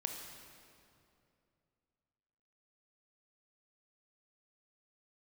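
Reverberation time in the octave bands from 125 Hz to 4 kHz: 3.1, 2.9, 2.8, 2.4, 2.1, 1.9 s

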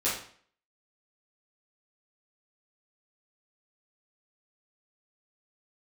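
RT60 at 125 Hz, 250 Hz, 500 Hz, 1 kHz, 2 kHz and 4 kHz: 0.50, 0.55, 0.50, 0.50, 0.50, 0.45 s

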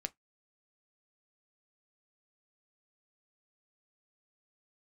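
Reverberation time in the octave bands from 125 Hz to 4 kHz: 0.15, 0.15, 0.10, 0.15, 0.15, 0.10 s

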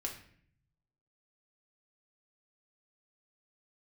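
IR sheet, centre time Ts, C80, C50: 21 ms, 12.0 dB, 8.0 dB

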